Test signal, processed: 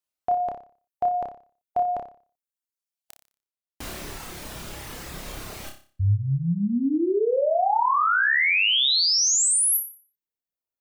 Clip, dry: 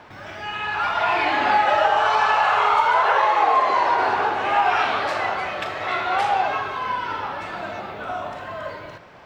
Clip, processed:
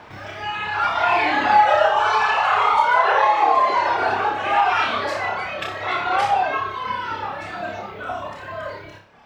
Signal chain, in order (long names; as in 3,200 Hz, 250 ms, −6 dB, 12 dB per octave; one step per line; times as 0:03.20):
reverb reduction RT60 1.8 s
flutter between parallel walls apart 5.1 metres, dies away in 0.4 s
level +2 dB